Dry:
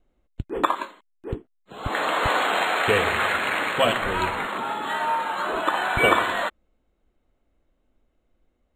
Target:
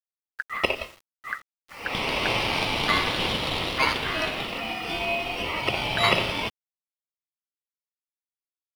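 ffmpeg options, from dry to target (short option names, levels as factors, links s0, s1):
-af "acrusher=bits=7:mix=0:aa=0.000001,aeval=exprs='val(0)*sin(2*PI*1600*n/s)':c=same"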